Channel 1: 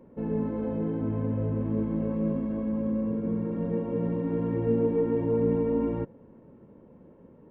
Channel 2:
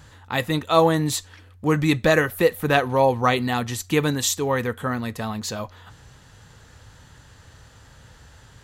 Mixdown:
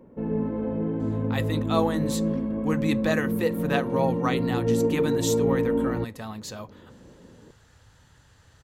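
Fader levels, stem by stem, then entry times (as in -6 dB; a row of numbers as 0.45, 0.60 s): +2.0, -8.0 dB; 0.00, 1.00 s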